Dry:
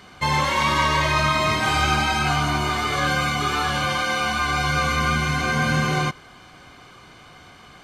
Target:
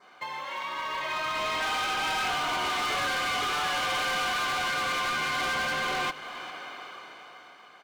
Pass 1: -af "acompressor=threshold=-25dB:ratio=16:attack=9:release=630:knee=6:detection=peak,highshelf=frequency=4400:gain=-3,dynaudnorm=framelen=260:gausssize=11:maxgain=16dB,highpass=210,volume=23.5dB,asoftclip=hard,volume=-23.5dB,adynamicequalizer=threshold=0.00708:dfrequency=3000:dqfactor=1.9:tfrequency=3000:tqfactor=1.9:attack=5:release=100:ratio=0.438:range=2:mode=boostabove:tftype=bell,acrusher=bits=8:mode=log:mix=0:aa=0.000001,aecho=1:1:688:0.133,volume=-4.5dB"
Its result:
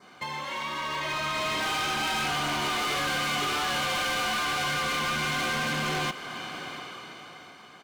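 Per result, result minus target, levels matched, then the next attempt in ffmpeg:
echo 286 ms late; 250 Hz band +6.0 dB; 8,000 Hz band +2.5 dB
-af "acompressor=threshold=-25dB:ratio=16:attack=9:release=630:knee=6:detection=peak,highshelf=frequency=4400:gain=-3,dynaudnorm=framelen=260:gausssize=11:maxgain=16dB,highpass=210,volume=23.5dB,asoftclip=hard,volume=-23.5dB,adynamicequalizer=threshold=0.00708:dfrequency=3000:dqfactor=1.9:tfrequency=3000:tqfactor=1.9:attack=5:release=100:ratio=0.438:range=2:mode=boostabove:tftype=bell,acrusher=bits=8:mode=log:mix=0:aa=0.000001,aecho=1:1:402:0.133,volume=-4.5dB"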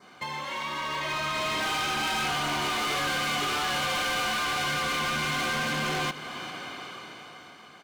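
250 Hz band +6.0 dB; 8,000 Hz band +2.5 dB
-af "acompressor=threshold=-25dB:ratio=16:attack=9:release=630:knee=6:detection=peak,highshelf=frequency=4400:gain=-3,dynaudnorm=framelen=260:gausssize=11:maxgain=16dB,highpass=510,volume=23.5dB,asoftclip=hard,volume=-23.5dB,adynamicequalizer=threshold=0.00708:dfrequency=3000:dqfactor=1.9:tfrequency=3000:tqfactor=1.9:attack=5:release=100:ratio=0.438:range=2:mode=boostabove:tftype=bell,acrusher=bits=8:mode=log:mix=0:aa=0.000001,aecho=1:1:402:0.133,volume=-4.5dB"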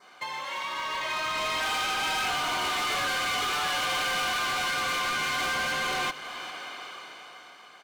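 8,000 Hz band +2.5 dB
-af "acompressor=threshold=-25dB:ratio=16:attack=9:release=630:knee=6:detection=peak,highshelf=frequency=4400:gain=-13.5,dynaudnorm=framelen=260:gausssize=11:maxgain=16dB,highpass=510,volume=23.5dB,asoftclip=hard,volume=-23.5dB,adynamicequalizer=threshold=0.00708:dfrequency=3000:dqfactor=1.9:tfrequency=3000:tqfactor=1.9:attack=5:release=100:ratio=0.438:range=2:mode=boostabove:tftype=bell,acrusher=bits=8:mode=log:mix=0:aa=0.000001,aecho=1:1:402:0.133,volume=-4.5dB"

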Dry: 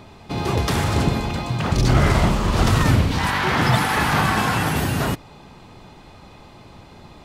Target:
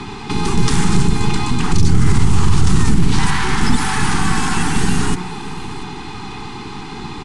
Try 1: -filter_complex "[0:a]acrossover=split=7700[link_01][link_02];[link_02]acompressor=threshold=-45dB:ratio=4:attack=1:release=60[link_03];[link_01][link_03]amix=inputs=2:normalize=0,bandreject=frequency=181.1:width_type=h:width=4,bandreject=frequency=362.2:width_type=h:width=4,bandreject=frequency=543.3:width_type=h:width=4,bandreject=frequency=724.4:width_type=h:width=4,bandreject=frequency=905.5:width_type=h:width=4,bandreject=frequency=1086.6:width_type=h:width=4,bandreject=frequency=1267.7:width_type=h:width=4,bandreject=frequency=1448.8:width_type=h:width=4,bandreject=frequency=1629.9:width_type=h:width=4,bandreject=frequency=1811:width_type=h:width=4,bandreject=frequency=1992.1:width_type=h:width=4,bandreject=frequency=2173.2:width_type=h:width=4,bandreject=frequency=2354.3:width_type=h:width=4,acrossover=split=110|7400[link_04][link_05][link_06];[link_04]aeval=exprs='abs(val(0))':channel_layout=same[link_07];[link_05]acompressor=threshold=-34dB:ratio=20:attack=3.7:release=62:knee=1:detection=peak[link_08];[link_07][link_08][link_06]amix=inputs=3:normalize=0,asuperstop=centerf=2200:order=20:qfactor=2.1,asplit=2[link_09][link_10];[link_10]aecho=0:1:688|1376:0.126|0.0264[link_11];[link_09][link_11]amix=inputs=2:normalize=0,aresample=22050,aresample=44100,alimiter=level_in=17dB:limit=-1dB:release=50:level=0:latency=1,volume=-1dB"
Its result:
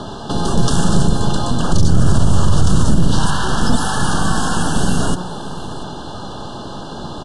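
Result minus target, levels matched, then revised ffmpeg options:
2,000 Hz band −3.5 dB
-filter_complex "[0:a]acrossover=split=7700[link_01][link_02];[link_02]acompressor=threshold=-45dB:ratio=4:attack=1:release=60[link_03];[link_01][link_03]amix=inputs=2:normalize=0,bandreject=frequency=181.1:width_type=h:width=4,bandreject=frequency=362.2:width_type=h:width=4,bandreject=frequency=543.3:width_type=h:width=4,bandreject=frequency=724.4:width_type=h:width=4,bandreject=frequency=905.5:width_type=h:width=4,bandreject=frequency=1086.6:width_type=h:width=4,bandreject=frequency=1267.7:width_type=h:width=4,bandreject=frequency=1448.8:width_type=h:width=4,bandreject=frequency=1629.9:width_type=h:width=4,bandreject=frequency=1811:width_type=h:width=4,bandreject=frequency=1992.1:width_type=h:width=4,bandreject=frequency=2173.2:width_type=h:width=4,bandreject=frequency=2354.3:width_type=h:width=4,acrossover=split=110|7400[link_04][link_05][link_06];[link_04]aeval=exprs='abs(val(0))':channel_layout=same[link_07];[link_05]acompressor=threshold=-34dB:ratio=20:attack=3.7:release=62:knee=1:detection=peak[link_08];[link_07][link_08][link_06]amix=inputs=3:normalize=0,asuperstop=centerf=580:order=20:qfactor=2.1,asplit=2[link_09][link_10];[link_10]aecho=0:1:688|1376:0.126|0.0264[link_11];[link_09][link_11]amix=inputs=2:normalize=0,aresample=22050,aresample=44100,alimiter=level_in=17dB:limit=-1dB:release=50:level=0:latency=1,volume=-1dB"

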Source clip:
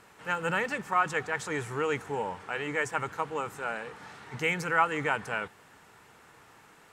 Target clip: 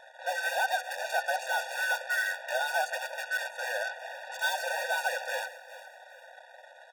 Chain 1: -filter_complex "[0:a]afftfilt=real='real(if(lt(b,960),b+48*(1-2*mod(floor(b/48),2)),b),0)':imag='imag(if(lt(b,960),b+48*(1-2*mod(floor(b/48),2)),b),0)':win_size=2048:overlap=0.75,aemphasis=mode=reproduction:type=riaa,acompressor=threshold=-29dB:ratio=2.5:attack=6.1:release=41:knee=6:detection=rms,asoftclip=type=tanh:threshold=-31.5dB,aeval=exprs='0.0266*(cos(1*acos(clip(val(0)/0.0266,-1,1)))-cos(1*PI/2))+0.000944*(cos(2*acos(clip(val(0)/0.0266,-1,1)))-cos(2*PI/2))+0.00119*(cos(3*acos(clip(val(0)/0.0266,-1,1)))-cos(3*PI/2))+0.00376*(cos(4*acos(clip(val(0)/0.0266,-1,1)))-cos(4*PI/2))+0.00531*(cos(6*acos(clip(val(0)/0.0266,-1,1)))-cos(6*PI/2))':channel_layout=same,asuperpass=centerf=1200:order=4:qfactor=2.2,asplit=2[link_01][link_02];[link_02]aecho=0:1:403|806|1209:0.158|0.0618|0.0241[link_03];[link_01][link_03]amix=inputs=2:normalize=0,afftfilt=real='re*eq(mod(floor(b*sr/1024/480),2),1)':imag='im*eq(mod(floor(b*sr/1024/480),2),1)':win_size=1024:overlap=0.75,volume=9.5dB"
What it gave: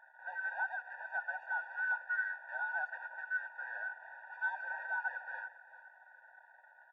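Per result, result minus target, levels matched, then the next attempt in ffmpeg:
soft clipping: distortion +7 dB; 1,000 Hz band −3.0 dB
-filter_complex "[0:a]afftfilt=real='real(if(lt(b,960),b+48*(1-2*mod(floor(b/48),2)),b),0)':imag='imag(if(lt(b,960),b+48*(1-2*mod(floor(b/48),2)),b),0)':win_size=2048:overlap=0.75,aemphasis=mode=reproduction:type=riaa,acompressor=threshold=-29dB:ratio=2.5:attack=6.1:release=41:knee=6:detection=rms,asoftclip=type=tanh:threshold=-24.5dB,aeval=exprs='0.0266*(cos(1*acos(clip(val(0)/0.0266,-1,1)))-cos(1*PI/2))+0.000944*(cos(2*acos(clip(val(0)/0.0266,-1,1)))-cos(2*PI/2))+0.00119*(cos(3*acos(clip(val(0)/0.0266,-1,1)))-cos(3*PI/2))+0.00376*(cos(4*acos(clip(val(0)/0.0266,-1,1)))-cos(4*PI/2))+0.00531*(cos(6*acos(clip(val(0)/0.0266,-1,1)))-cos(6*PI/2))':channel_layout=same,asuperpass=centerf=1200:order=4:qfactor=2.2,asplit=2[link_01][link_02];[link_02]aecho=0:1:403|806|1209:0.158|0.0618|0.0241[link_03];[link_01][link_03]amix=inputs=2:normalize=0,afftfilt=real='re*eq(mod(floor(b*sr/1024/480),2),1)':imag='im*eq(mod(floor(b*sr/1024/480),2),1)':win_size=1024:overlap=0.75,volume=9.5dB"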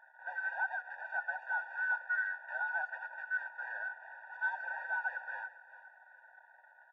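1,000 Hz band −3.0 dB
-filter_complex "[0:a]afftfilt=real='real(if(lt(b,960),b+48*(1-2*mod(floor(b/48),2)),b),0)':imag='imag(if(lt(b,960),b+48*(1-2*mod(floor(b/48),2)),b),0)':win_size=2048:overlap=0.75,aemphasis=mode=reproduction:type=riaa,acompressor=threshold=-29dB:ratio=2.5:attack=6.1:release=41:knee=6:detection=rms,asoftclip=type=tanh:threshold=-24.5dB,aeval=exprs='0.0266*(cos(1*acos(clip(val(0)/0.0266,-1,1)))-cos(1*PI/2))+0.000944*(cos(2*acos(clip(val(0)/0.0266,-1,1)))-cos(2*PI/2))+0.00119*(cos(3*acos(clip(val(0)/0.0266,-1,1)))-cos(3*PI/2))+0.00376*(cos(4*acos(clip(val(0)/0.0266,-1,1)))-cos(4*PI/2))+0.00531*(cos(6*acos(clip(val(0)/0.0266,-1,1)))-cos(6*PI/2))':channel_layout=same,asplit=2[link_01][link_02];[link_02]aecho=0:1:403|806|1209:0.158|0.0618|0.0241[link_03];[link_01][link_03]amix=inputs=2:normalize=0,afftfilt=real='re*eq(mod(floor(b*sr/1024/480),2),1)':imag='im*eq(mod(floor(b*sr/1024/480),2),1)':win_size=1024:overlap=0.75,volume=9.5dB"

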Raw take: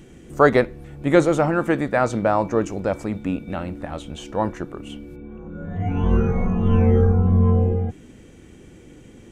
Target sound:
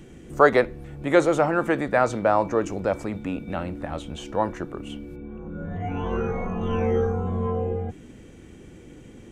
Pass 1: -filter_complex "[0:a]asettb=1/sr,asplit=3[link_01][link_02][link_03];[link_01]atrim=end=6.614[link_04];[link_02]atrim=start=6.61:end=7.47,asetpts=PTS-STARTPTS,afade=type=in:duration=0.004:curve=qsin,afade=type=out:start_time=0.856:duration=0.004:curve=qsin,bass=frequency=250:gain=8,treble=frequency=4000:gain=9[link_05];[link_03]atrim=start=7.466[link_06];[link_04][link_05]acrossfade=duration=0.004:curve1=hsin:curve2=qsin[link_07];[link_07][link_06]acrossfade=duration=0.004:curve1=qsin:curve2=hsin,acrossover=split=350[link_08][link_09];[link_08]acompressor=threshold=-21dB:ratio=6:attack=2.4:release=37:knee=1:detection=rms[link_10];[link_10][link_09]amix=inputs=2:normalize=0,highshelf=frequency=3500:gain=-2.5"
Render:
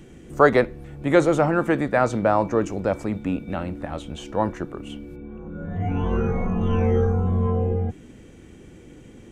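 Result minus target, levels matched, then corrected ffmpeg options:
downward compressor: peak gain reduction −6.5 dB
-filter_complex "[0:a]asettb=1/sr,asplit=3[link_01][link_02][link_03];[link_01]atrim=end=6.614[link_04];[link_02]atrim=start=6.61:end=7.47,asetpts=PTS-STARTPTS,afade=type=in:duration=0.004:curve=qsin,afade=type=out:start_time=0.856:duration=0.004:curve=qsin,bass=frequency=250:gain=8,treble=frequency=4000:gain=9[link_05];[link_03]atrim=start=7.466[link_06];[link_04][link_05]acrossfade=duration=0.004:curve1=hsin:curve2=qsin[link_07];[link_07][link_06]acrossfade=duration=0.004:curve1=qsin:curve2=hsin,acrossover=split=350[link_08][link_09];[link_08]acompressor=threshold=-29dB:ratio=6:attack=2.4:release=37:knee=1:detection=rms[link_10];[link_10][link_09]amix=inputs=2:normalize=0,highshelf=frequency=3500:gain=-2.5"

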